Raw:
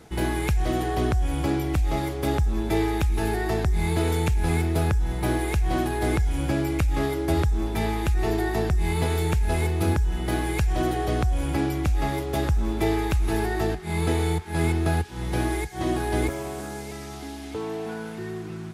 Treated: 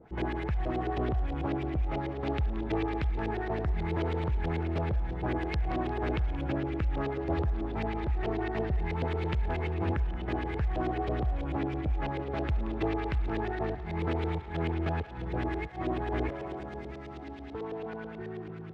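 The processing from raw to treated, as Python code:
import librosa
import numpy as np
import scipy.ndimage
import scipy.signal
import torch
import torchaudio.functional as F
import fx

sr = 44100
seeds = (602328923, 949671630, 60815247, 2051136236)

y = fx.self_delay(x, sr, depth_ms=0.24)
y = fx.filter_lfo_lowpass(y, sr, shape='saw_up', hz=9.2, low_hz=470.0, high_hz=3600.0, q=1.7)
y = fx.echo_split(y, sr, split_hz=520.0, low_ms=647, high_ms=176, feedback_pct=52, wet_db=-15.0)
y = y * 10.0 ** (-7.5 / 20.0)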